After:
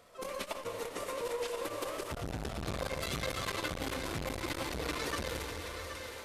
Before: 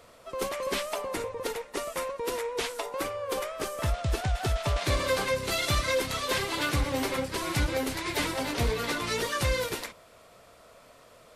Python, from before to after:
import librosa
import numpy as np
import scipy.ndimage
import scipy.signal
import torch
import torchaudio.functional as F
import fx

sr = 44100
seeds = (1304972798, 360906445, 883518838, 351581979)

y = fx.stretch_grains(x, sr, factor=0.55, grain_ms=69.0)
y = fx.echo_split(y, sr, split_hz=390.0, low_ms=162, high_ms=775, feedback_pct=52, wet_db=-10)
y = fx.rev_plate(y, sr, seeds[0], rt60_s=3.9, hf_ratio=0.95, predelay_ms=0, drr_db=3.0)
y = fx.transformer_sat(y, sr, knee_hz=590.0)
y = y * librosa.db_to_amplitude(-5.0)